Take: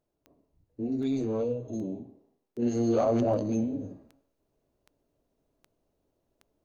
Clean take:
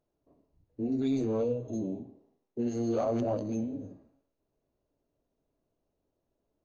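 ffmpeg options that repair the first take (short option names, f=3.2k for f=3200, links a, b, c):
-af "adeclick=t=4,asetnsamples=n=441:p=0,asendcmd='2.62 volume volume -4.5dB',volume=0dB"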